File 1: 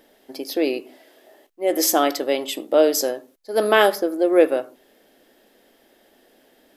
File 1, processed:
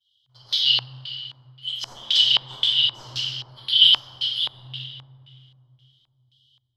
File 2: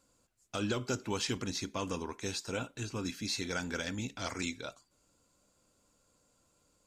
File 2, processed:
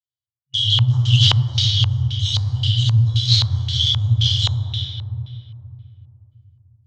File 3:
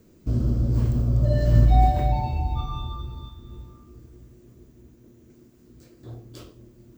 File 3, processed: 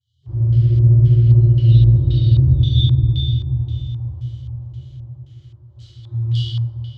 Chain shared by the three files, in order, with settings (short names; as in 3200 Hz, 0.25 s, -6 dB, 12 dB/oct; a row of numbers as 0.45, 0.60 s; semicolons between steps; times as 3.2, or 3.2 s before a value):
expander -47 dBFS; HPF 97 Hz 24 dB/oct; FFT band-reject 130–2900 Hz; AGC gain up to 4 dB; tape echo 95 ms, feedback 77%, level -17 dB, low-pass 2400 Hz; reverse; compressor 16:1, threshold -29 dBFS; reverse; sample leveller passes 1; shoebox room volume 120 m³, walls hard, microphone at 1 m; LFO low-pass square 1.9 Hz 980–2900 Hz; Doppler distortion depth 0.12 ms; normalise peaks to -2 dBFS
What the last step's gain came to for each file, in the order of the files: +7.0, +11.5, +5.5 dB